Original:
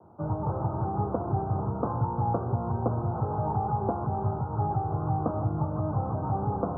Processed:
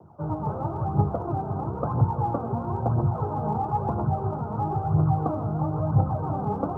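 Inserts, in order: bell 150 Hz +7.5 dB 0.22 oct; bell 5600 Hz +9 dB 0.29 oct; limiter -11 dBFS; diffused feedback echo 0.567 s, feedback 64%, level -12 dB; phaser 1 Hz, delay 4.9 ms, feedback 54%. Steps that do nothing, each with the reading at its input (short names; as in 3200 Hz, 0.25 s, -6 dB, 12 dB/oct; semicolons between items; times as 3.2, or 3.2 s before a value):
bell 5600 Hz: input band ends at 1300 Hz; limiter -11 dBFS: input peak -13.5 dBFS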